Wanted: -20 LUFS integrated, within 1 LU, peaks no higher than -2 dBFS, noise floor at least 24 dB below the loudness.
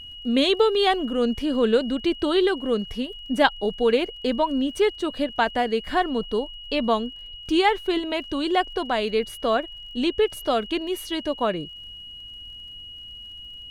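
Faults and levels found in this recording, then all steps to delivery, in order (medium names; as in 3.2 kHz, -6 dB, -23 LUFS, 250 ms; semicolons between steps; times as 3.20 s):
tick rate 47 per s; steady tone 2.9 kHz; tone level -38 dBFS; loudness -23.5 LUFS; peak level -3.0 dBFS; loudness target -20.0 LUFS
-> de-click; band-stop 2.9 kHz, Q 30; trim +3.5 dB; peak limiter -2 dBFS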